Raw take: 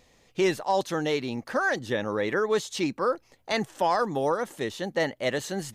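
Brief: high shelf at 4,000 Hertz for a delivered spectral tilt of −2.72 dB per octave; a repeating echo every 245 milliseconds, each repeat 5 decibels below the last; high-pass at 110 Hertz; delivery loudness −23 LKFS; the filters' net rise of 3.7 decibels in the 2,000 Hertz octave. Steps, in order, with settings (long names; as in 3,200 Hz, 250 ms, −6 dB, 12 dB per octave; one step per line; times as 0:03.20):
high-pass filter 110 Hz
parametric band 2,000 Hz +5.5 dB
high-shelf EQ 4,000 Hz −4 dB
repeating echo 245 ms, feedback 56%, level −5 dB
level +2 dB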